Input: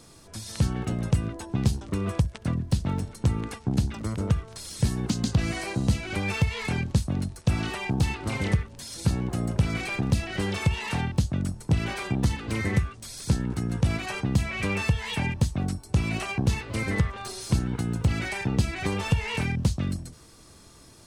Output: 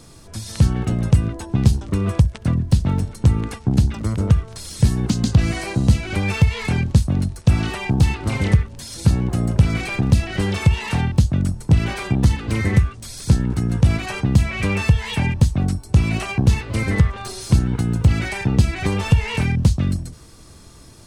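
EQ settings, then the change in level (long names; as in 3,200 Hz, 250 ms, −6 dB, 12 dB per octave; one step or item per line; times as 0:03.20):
low-shelf EQ 150 Hz +7 dB
+4.5 dB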